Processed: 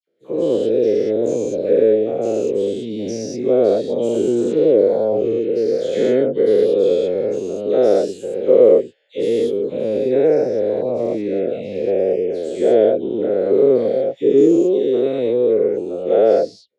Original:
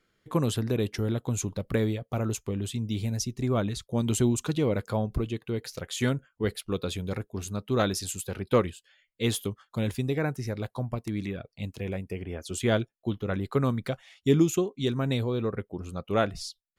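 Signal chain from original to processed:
every bin's largest magnitude spread in time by 240 ms
all-pass dispersion lows, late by 74 ms, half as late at 2,300 Hz
automatic gain control
band-pass filter 350–4,900 Hz
low shelf with overshoot 750 Hz +13.5 dB, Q 3
level −15 dB

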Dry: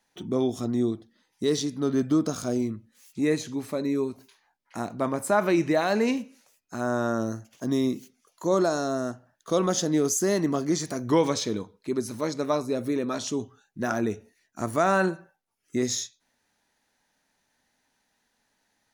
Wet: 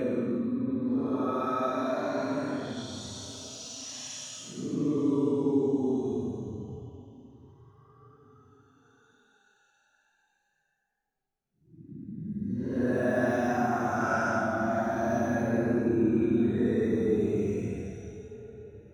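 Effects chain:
extreme stretch with random phases 16×, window 0.05 s, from 0:13.02
high-shelf EQ 2,300 Hz −10 dB

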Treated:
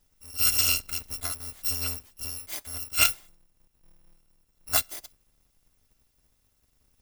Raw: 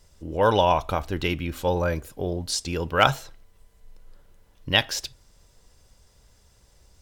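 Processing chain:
samples in bit-reversed order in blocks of 256 samples
expander for the loud parts 1.5 to 1, over −33 dBFS
level −2 dB

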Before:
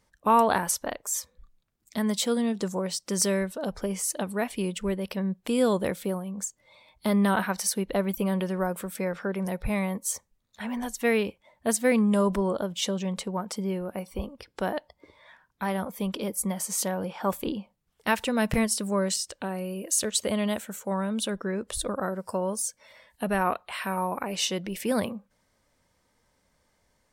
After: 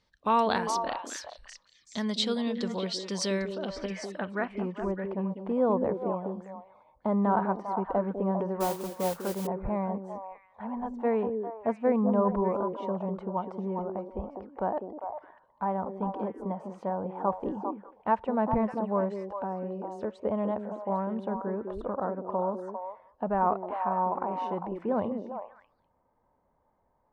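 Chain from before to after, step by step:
low-pass filter sweep 4,200 Hz → 910 Hz, 0:03.33–0:04.94
echo through a band-pass that steps 200 ms, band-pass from 320 Hz, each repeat 1.4 octaves, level −2 dB
0:08.60–0:09.47: noise that follows the level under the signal 12 dB
level −4.5 dB

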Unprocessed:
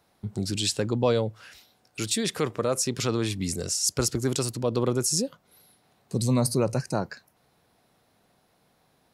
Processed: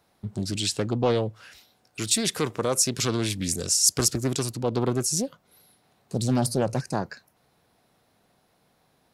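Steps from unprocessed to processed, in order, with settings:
0:02.05–0:04.20: high-shelf EQ 4,000 Hz +7.5 dB
highs frequency-modulated by the lows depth 0.46 ms

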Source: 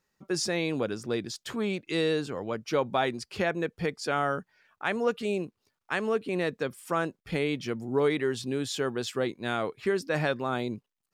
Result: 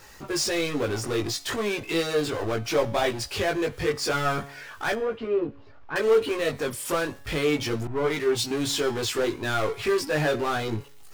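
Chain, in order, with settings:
parametric band 180 Hz −14.5 dB 0.54 octaves
power curve on the samples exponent 0.5
multi-voice chorus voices 6, 0.34 Hz, delay 19 ms, depth 1.5 ms
0:04.95–0:05.96: head-to-tape spacing loss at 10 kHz 43 dB
tuned comb filter 140 Hz, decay 0.73 s, harmonics all, mix 50%
0:07.87–0:08.51: multiband upward and downward expander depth 100%
level +6 dB

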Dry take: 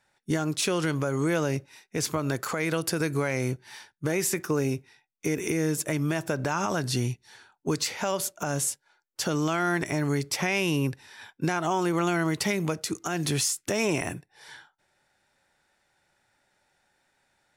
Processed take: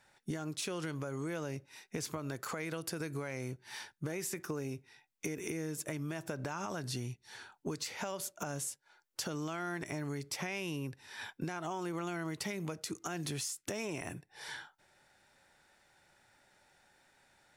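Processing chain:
downward compressor 4 to 1, threshold −42 dBFS, peak gain reduction 17 dB
level +3 dB

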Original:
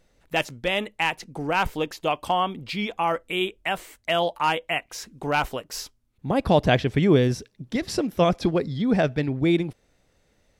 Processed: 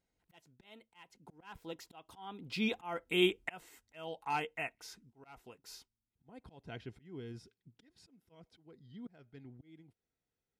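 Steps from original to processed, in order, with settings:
source passing by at 0:03.11, 22 m/s, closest 8.5 metres
volume swells 497 ms
notch comb filter 580 Hz

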